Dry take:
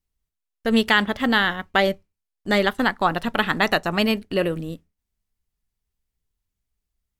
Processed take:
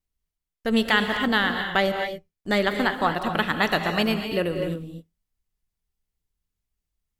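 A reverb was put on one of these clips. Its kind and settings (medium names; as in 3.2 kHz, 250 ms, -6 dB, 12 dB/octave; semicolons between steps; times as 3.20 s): gated-style reverb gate 280 ms rising, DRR 6 dB; trim -3 dB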